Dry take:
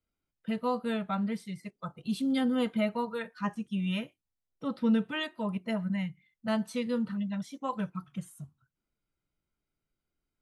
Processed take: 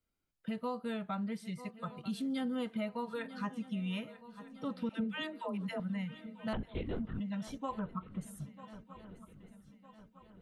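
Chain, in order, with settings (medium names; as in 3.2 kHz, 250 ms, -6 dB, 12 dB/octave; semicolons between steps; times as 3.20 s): 4.89–5.80 s: phase dispersion lows, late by 122 ms, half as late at 440 Hz; 6.53–7.20 s: LPC vocoder at 8 kHz whisper; 7.79–8.21 s: resonant low-pass 1.1 kHz, resonance Q 2.6; shuffle delay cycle 1257 ms, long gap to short 3:1, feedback 46%, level -20 dB; compression 2.5:1, threshold -37 dBFS, peak gain reduction 11 dB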